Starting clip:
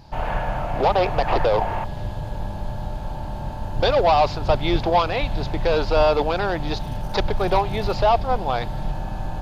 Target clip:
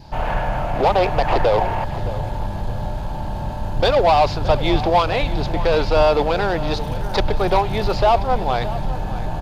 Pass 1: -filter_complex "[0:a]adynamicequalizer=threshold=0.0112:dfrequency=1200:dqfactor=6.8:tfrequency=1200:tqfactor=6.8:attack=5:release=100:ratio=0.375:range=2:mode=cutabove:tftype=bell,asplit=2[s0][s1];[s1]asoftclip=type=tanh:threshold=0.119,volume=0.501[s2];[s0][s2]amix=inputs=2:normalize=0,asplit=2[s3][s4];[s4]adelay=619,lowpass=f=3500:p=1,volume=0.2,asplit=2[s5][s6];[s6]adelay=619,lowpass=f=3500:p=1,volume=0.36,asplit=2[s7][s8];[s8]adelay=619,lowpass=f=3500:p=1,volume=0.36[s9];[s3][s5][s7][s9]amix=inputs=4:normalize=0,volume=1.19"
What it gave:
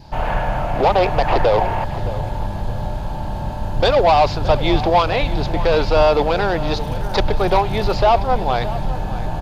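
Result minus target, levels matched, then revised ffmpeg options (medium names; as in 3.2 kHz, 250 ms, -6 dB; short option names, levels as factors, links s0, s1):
saturation: distortion -6 dB
-filter_complex "[0:a]adynamicequalizer=threshold=0.0112:dfrequency=1200:dqfactor=6.8:tfrequency=1200:tqfactor=6.8:attack=5:release=100:ratio=0.375:range=2:mode=cutabove:tftype=bell,asplit=2[s0][s1];[s1]asoftclip=type=tanh:threshold=0.0355,volume=0.501[s2];[s0][s2]amix=inputs=2:normalize=0,asplit=2[s3][s4];[s4]adelay=619,lowpass=f=3500:p=1,volume=0.2,asplit=2[s5][s6];[s6]adelay=619,lowpass=f=3500:p=1,volume=0.36,asplit=2[s7][s8];[s8]adelay=619,lowpass=f=3500:p=1,volume=0.36[s9];[s3][s5][s7][s9]amix=inputs=4:normalize=0,volume=1.19"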